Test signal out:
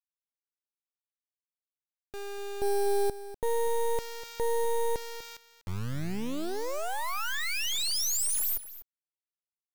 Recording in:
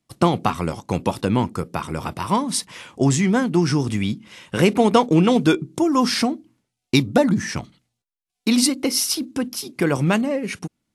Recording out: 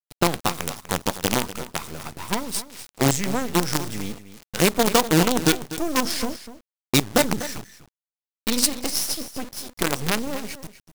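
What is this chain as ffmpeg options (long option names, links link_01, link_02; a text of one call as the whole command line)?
ffmpeg -i in.wav -filter_complex "[0:a]acrusher=bits=3:dc=4:mix=0:aa=0.000001,asplit=2[link_01][link_02];[link_02]aecho=0:1:246:0.2[link_03];[link_01][link_03]amix=inputs=2:normalize=0,adynamicequalizer=threshold=0.0126:dfrequency=3700:dqfactor=0.7:tfrequency=3700:tqfactor=0.7:attack=5:release=100:ratio=0.375:range=2.5:mode=boostabove:tftype=highshelf,volume=-4dB" out.wav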